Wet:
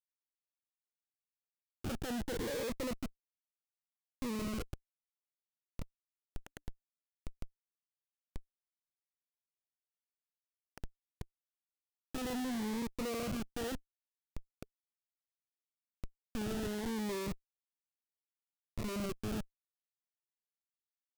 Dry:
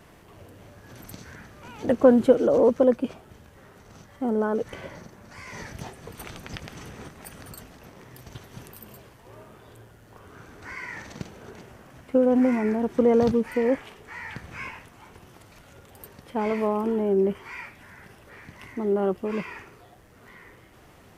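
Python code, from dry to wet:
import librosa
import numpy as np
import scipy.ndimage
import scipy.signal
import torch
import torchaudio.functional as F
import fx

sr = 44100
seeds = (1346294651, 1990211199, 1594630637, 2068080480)

y = fx.schmitt(x, sr, flips_db=-26.5)
y = fx.notch_cascade(y, sr, direction='rising', hz=0.69)
y = y * 10.0 ** (-8.5 / 20.0)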